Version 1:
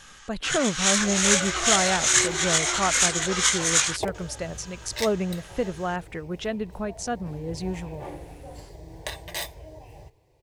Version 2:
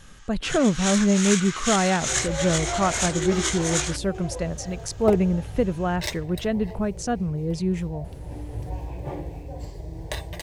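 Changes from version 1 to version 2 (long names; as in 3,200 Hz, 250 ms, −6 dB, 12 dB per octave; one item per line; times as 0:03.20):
first sound −5.5 dB
second sound: entry +1.05 s
master: add low-shelf EQ 370 Hz +9 dB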